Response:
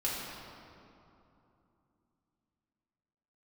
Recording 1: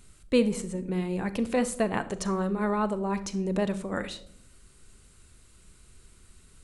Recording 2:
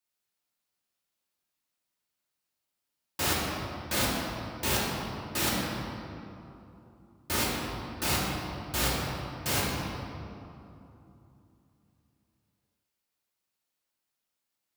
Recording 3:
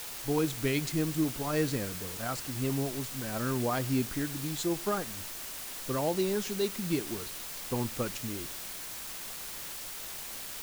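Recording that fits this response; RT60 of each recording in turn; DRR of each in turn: 2; no single decay rate, 2.9 s, 1.2 s; 13.0 dB, -6.5 dB, 23.0 dB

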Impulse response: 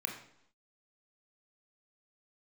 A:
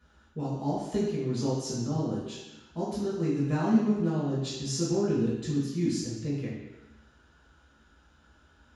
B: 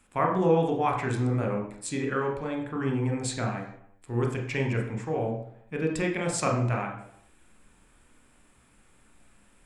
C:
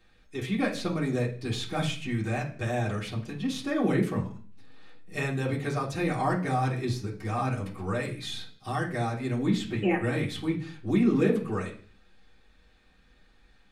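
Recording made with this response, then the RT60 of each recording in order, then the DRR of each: B; no single decay rate, 0.75 s, 0.45 s; -8.0 dB, 1.5 dB, -8.0 dB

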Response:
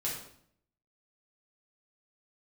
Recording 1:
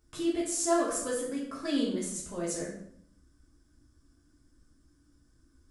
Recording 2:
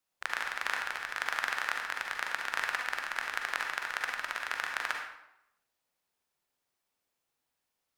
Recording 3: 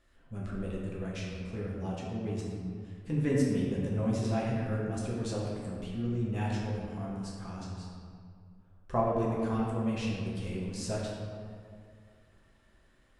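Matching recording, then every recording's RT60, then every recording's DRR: 1; 0.65 s, 0.85 s, 2.2 s; -6.0 dB, 1.5 dB, -5.0 dB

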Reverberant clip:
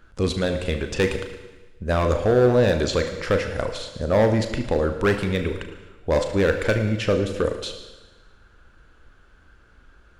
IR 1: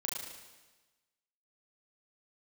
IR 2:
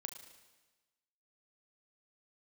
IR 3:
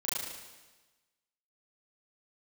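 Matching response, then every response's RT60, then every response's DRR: 2; 1.2 s, 1.2 s, 1.2 s; -3.0 dB, 5.5 dB, -9.0 dB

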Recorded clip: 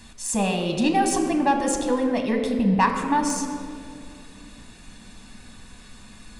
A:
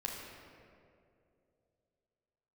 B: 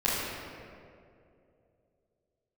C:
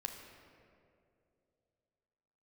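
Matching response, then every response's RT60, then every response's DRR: C; 2.6 s, 2.6 s, 2.6 s; -2.5 dB, -12.0 dB, 3.0 dB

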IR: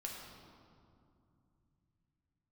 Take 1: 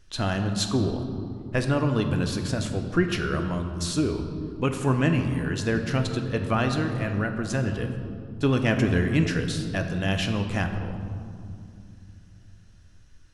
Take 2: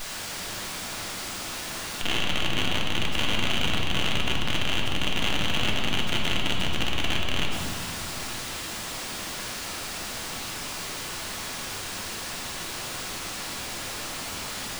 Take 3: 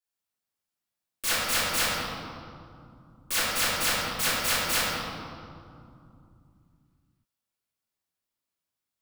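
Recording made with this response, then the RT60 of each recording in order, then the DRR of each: 2; 2.4 s, 2.5 s, 2.5 s; 5.0 dB, -1.5 dB, -10.5 dB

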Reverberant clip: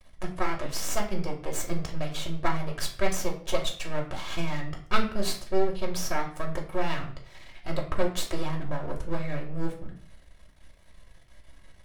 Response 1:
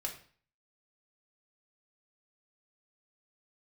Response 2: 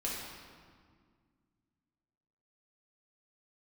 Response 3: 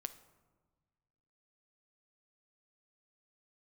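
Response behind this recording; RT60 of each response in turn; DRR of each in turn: 1; 0.45 s, 1.9 s, 1.4 s; -0.5 dB, -5.5 dB, 10.0 dB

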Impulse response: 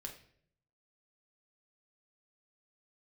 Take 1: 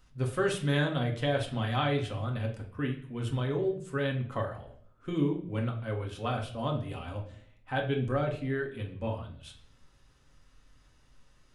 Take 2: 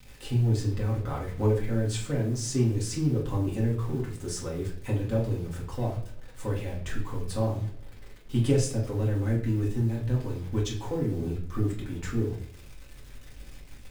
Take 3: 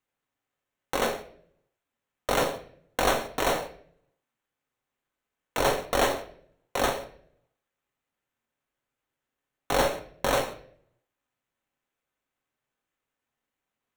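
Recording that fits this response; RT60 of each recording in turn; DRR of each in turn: 1; no single decay rate, no single decay rate, no single decay rate; 1.0 dB, -4.5 dB, 5.0 dB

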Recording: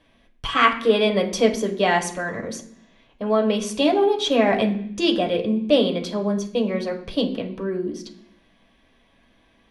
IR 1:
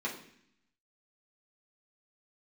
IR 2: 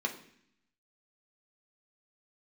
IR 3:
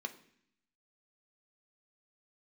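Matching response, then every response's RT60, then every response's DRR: 2; 0.65 s, 0.65 s, 0.65 s; -6.0 dB, 1.0 dB, 5.5 dB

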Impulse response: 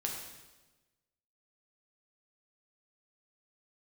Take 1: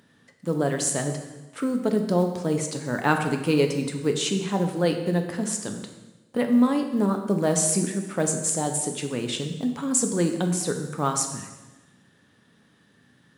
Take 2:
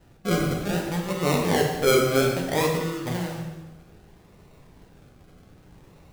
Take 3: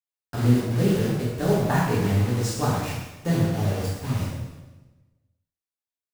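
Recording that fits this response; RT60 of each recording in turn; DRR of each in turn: 2; 1.2 s, 1.2 s, 1.2 s; 4.5 dB, -0.5 dB, -7.5 dB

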